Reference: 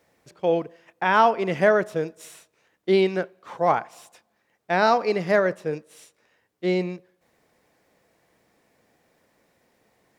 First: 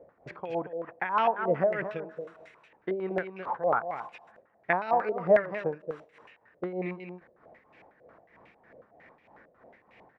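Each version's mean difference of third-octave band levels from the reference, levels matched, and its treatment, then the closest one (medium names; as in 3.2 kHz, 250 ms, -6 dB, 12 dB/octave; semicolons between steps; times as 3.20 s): 8.0 dB: compression 2.5:1, threshold -39 dBFS, peak gain reduction 17.5 dB; tremolo 3.2 Hz, depth 76%; on a send: delay 229 ms -9 dB; on the sum: step-sequenced low-pass 11 Hz 560–2500 Hz; trim +6.5 dB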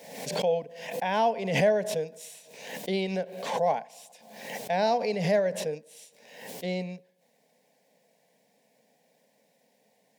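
6.0 dB: in parallel at -3 dB: compression, threshold -30 dBFS, peak gain reduction 16.5 dB; on the sum: high-pass 170 Hz 12 dB/octave; static phaser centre 340 Hz, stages 6; swell ahead of each attack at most 58 dB/s; trim -4.5 dB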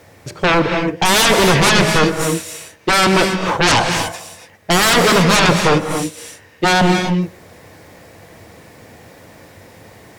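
16.0 dB: peaking EQ 94 Hz +13.5 dB 0.64 oct; in parallel at +0.5 dB: gain riding within 3 dB; on the sum: sine folder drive 19 dB, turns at 0 dBFS; gated-style reverb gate 310 ms rising, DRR 5 dB; trim -9.5 dB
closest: second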